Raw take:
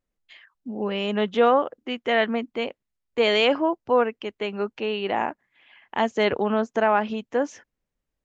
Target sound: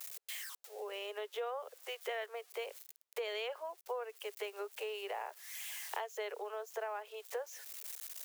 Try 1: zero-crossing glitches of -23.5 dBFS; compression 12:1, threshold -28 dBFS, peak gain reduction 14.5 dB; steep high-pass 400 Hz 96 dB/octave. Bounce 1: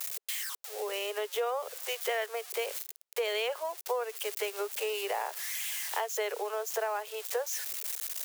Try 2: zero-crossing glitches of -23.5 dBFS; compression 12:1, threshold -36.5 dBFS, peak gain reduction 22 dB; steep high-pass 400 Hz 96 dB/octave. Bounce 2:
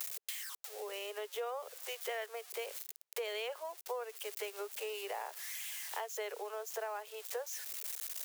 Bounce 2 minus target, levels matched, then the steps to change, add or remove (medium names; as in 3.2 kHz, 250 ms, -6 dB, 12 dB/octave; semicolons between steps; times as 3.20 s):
zero-crossing glitches: distortion +10 dB
change: zero-crossing glitches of -33.5 dBFS